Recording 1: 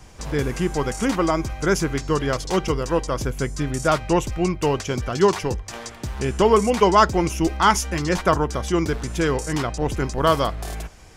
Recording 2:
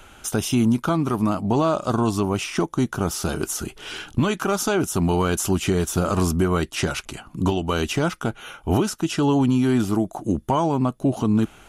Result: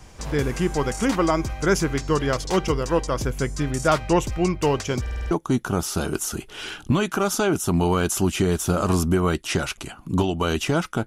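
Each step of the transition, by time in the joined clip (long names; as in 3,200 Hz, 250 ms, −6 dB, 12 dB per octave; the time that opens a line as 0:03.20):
recording 1
0:05.01: stutter in place 0.05 s, 6 plays
0:05.31: continue with recording 2 from 0:02.59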